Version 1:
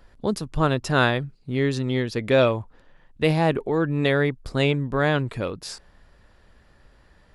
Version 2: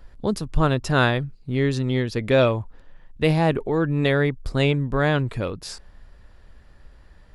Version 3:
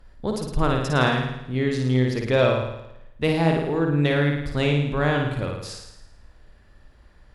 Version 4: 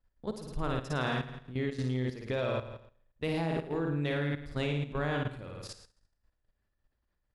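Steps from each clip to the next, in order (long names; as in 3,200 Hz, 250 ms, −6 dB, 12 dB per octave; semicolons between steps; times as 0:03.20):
low-shelf EQ 80 Hz +10 dB
harmonic generator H 3 −24 dB, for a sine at −4.5 dBFS; flutter between parallel walls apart 9.4 metres, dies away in 0.85 s; level −1.5 dB
noise gate −40 dBFS, range −14 dB; output level in coarse steps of 12 dB; level −7 dB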